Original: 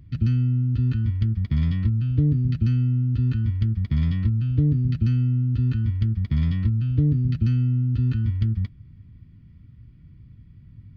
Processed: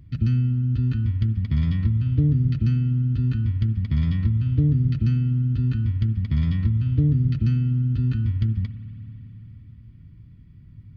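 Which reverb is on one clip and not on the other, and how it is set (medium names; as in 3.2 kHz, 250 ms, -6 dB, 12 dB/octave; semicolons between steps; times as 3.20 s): spring tank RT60 4 s, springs 55 ms, chirp 40 ms, DRR 11.5 dB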